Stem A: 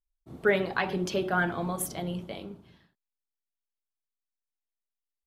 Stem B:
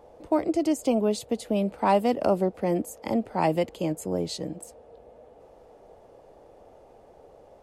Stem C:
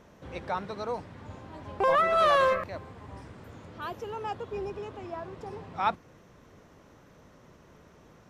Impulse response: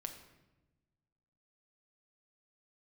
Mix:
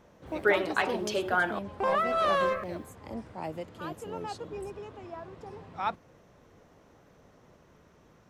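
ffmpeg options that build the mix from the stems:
-filter_complex "[0:a]highpass=380,acrusher=bits=11:mix=0:aa=0.000001,volume=1dB,asplit=3[link_01][link_02][link_03];[link_01]atrim=end=1.59,asetpts=PTS-STARTPTS,afade=type=out:start_time=1.586:duration=0.004:curve=hsin[link_04];[link_02]atrim=start=1.59:end=2.4,asetpts=PTS-STARTPTS,volume=0[link_05];[link_03]atrim=start=2.4,asetpts=PTS-STARTPTS,afade=type=in:duration=0.004:curve=hsin[link_06];[link_04][link_05][link_06]concat=n=3:v=0:a=1[link_07];[1:a]volume=-13.5dB[link_08];[2:a]volume=-4dB[link_09];[link_07][link_08][link_09]amix=inputs=3:normalize=0"

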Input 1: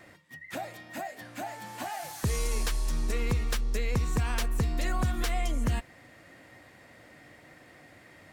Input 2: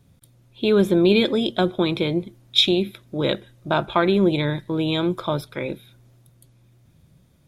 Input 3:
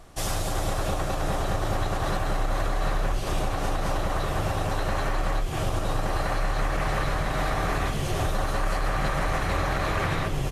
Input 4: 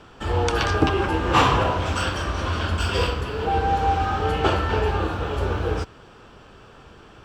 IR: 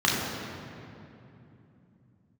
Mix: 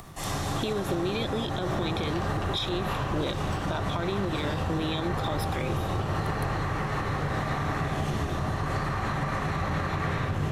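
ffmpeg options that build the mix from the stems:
-filter_complex "[0:a]volume=-18dB[link_01];[1:a]acompressor=threshold=-24dB:ratio=6,bass=frequency=250:gain=-3,treble=frequency=4000:gain=6,volume=2.5dB[link_02];[2:a]volume=-10.5dB,asplit=2[link_03][link_04];[link_04]volume=-6.5dB[link_05];[3:a]adelay=1550,volume=-13dB[link_06];[4:a]atrim=start_sample=2205[link_07];[link_05][link_07]afir=irnorm=-1:irlink=0[link_08];[link_01][link_02][link_03][link_06][link_08]amix=inputs=5:normalize=0,acompressor=mode=upward:threshold=-39dB:ratio=2.5,alimiter=limit=-19.5dB:level=0:latency=1:release=146"

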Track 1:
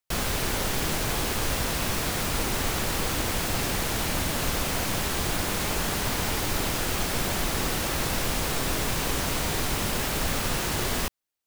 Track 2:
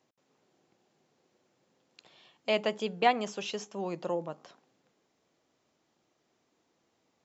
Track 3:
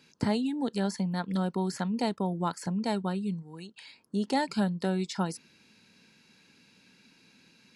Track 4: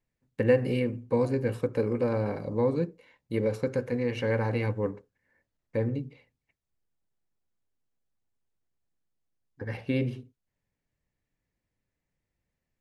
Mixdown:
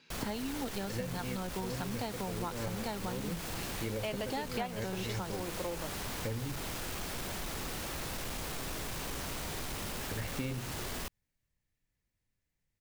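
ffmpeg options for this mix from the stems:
ffmpeg -i stem1.wav -i stem2.wav -i stem3.wav -i stem4.wav -filter_complex "[0:a]asoftclip=type=tanh:threshold=-23.5dB,volume=-9dB[link_01];[1:a]adelay=1550,volume=-2dB[link_02];[2:a]lowpass=5200,lowshelf=frequency=390:gain=-7,volume=0dB,asplit=2[link_03][link_04];[3:a]equalizer=frequency=520:width=0.31:gain=-8,adelay=500,volume=2dB[link_05];[link_04]apad=whole_len=586891[link_06];[link_05][link_06]sidechaincompress=threshold=-38dB:ratio=8:attack=16:release=190[link_07];[link_01][link_02][link_03][link_07]amix=inputs=4:normalize=0,acompressor=threshold=-33dB:ratio=6" out.wav

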